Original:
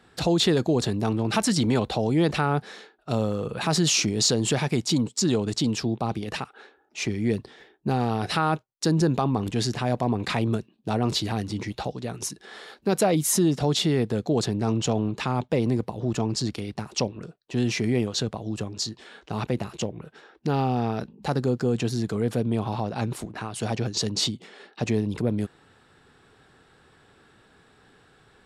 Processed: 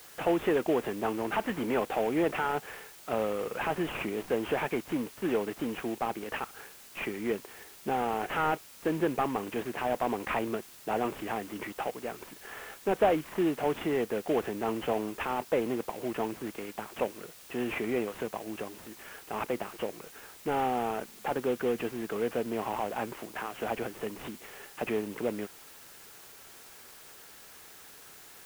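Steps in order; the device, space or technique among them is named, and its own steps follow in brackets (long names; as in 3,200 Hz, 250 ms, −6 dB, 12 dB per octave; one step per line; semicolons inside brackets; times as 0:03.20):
army field radio (band-pass filter 390–3,200 Hz; variable-slope delta modulation 16 kbit/s; white noise bed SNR 19 dB)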